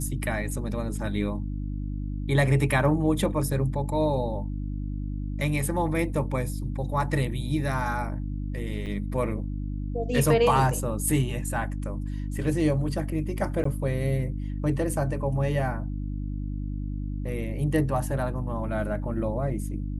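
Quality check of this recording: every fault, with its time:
hum 50 Hz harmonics 6 -31 dBFS
8.86–8.87 gap 5.5 ms
13.64–13.65 gap 14 ms

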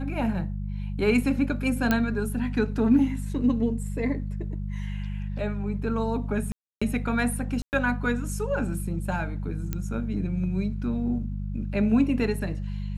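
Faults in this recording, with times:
hum 50 Hz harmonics 4 -31 dBFS
1.91 pop -9 dBFS
6.52–6.82 gap 0.295 s
7.62–7.73 gap 0.109 s
9.73 pop -15 dBFS

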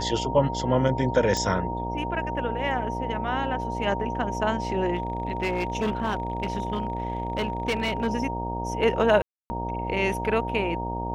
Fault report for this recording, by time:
buzz 60 Hz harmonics 16 -32 dBFS
tone 930 Hz -31 dBFS
1.37 pop -14 dBFS
4.95–8.08 clipped -21 dBFS
9.22–9.5 gap 0.28 s

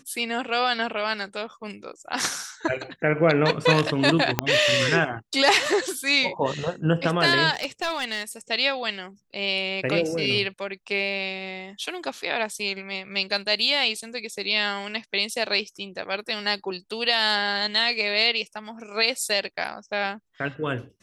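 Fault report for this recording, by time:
4.39 pop -4 dBFS
7.51–8.22 clipped -20.5 dBFS

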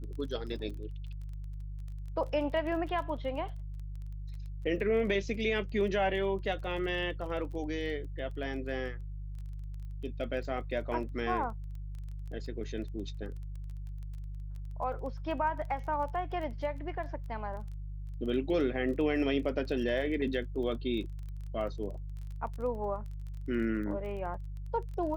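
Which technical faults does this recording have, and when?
crackle 19/s -41 dBFS
hum 50 Hz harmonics 3 -40 dBFS

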